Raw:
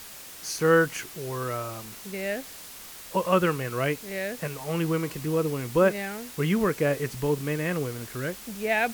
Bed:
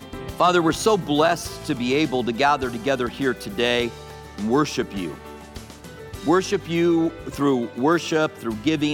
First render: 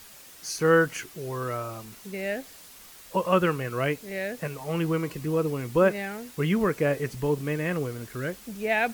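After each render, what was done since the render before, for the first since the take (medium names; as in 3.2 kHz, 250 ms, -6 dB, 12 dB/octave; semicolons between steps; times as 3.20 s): noise reduction 6 dB, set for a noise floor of -44 dBFS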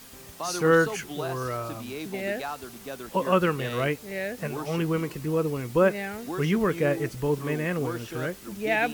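add bed -16 dB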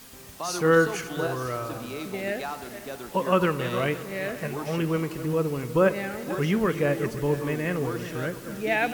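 backward echo that repeats 254 ms, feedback 47%, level -12 dB; spring tank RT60 3.2 s, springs 56 ms, chirp 70 ms, DRR 15 dB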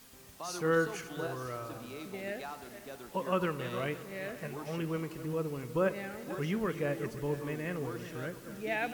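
trim -9 dB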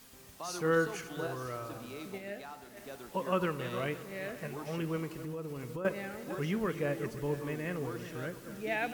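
2.18–2.77 s: feedback comb 67 Hz, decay 0.28 s; 5.23–5.85 s: compression, threshold -36 dBFS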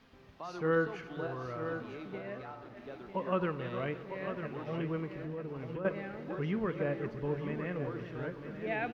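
distance through air 290 m; delay 950 ms -9 dB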